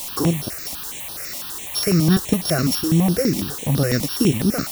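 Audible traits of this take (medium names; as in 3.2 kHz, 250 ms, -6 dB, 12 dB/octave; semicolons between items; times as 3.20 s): a buzz of ramps at a fixed pitch in blocks of 8 samples; tremolo saw up 3.2 Hz, depth 35%; a quantiser's noise floor 6-bit, dither triangular; notches that jump at a steady rate 12 Hz 410–7300 Hz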